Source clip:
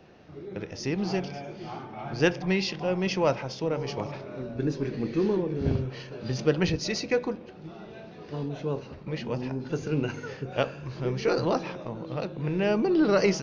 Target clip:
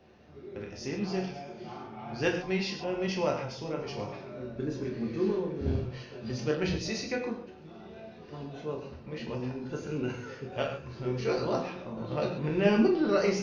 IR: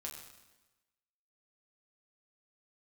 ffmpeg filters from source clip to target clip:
-filter_complex "[0:a]asettb=1/sr,asplit=3[a][b][c];[a]atrim=end=11.974[d];[b]atrim=start=11.97:end=12.88,asetpts=PTS-STARTPTS,afade=t=in:d=0.004:c=qsin,afade=t=out:st=0.906:d=0.004:c=qsin,acontrast=41[e];[c]atrim=start=12.876[f];[d][e]acrossfade=d=0.004:c1=hsin:c2=qsin[g];[g][f]acrossfade=d=0.004:c1=qsin:c2=hsin[h];[1:a]atrim=start_sample=2205,atrim=end_sample=6615[i];[h][i]afir=irnorm=-1:irlink=0,volume=-1.5dB"

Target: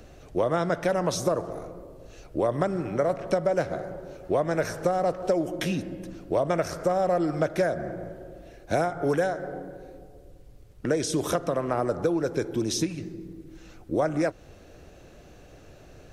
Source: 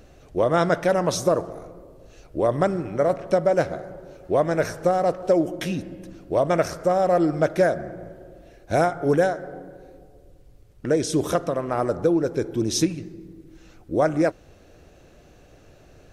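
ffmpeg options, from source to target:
-filter_complex "[0:a]acrossover=split=120|670[a][b][c];[a]acompressor=threshold=-44dB:ratio=4[d];[b]acompressor=threshold=-27dB:ratio=4[e];[c]acompressor=threshold=-30dB:ratio=4[f];[d][e][f]amix=inputs=3:normalize=0,volume=1.5dB"

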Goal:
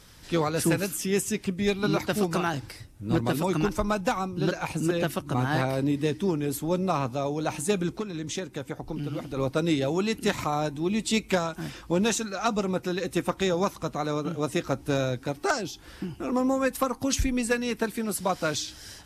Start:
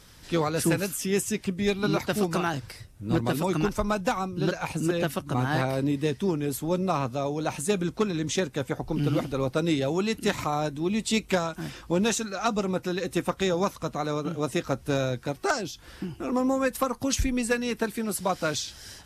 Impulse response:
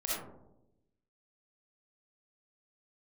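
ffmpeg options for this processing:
-filter_complex "[0:a]asplit=2[a][b];[b]asplit=3[c][d][e];[c]bandpass=f=300:t=q:w=8,volume=0dB[f];[d]bandpass=f=870:t=q:w=8,volume=-6dB[g];[e]bandpass=f=2.24k:t=q:w=8,volume=-9dB[h];[f][g][h]amix=inputs=3:normalize=0[i];[1:a]atrim=start_sample=2205[j];[i][j]afir=irnorm=-1:irlink=0,volume=-19dB[k];[a][k]amix=inputs=2:normalize=0,asettb=1/sr,asplit=3[l][m][n];[l]atrim=end=7.974[o];[m]atrim=start=7.97:end=9.37,asetpts=PTS-STARTPTS,afade=t=in:d=0.004:c=qsin,afade=t=out:st=1.396:d=0.004:c=qsin,acompressor=threshold=-31dB:ratio=3[p];[n]atrim=start=9.366[q];[o][p]acrossfade=d=0.004:c1=hsin:c2=qsin[r];[r][q]acrossfade=d=0.004:c1=qsin:c2=hsin"

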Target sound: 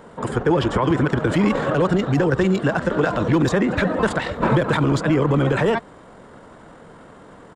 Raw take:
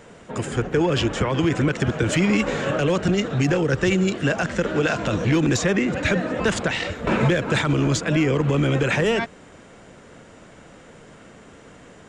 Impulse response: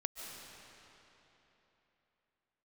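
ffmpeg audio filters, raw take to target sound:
-af "equalizer=f=100:t=o:w=0.67:g=-3,equalizer=f=1k:t=o:w=0.67:g=6,equalizer=f=2.5k:t=o:w=0.67:g=-8,equalizer=f=6.3k:t=o:w=0.67:g=-11,atempo=1.6,volume=2.5dB"

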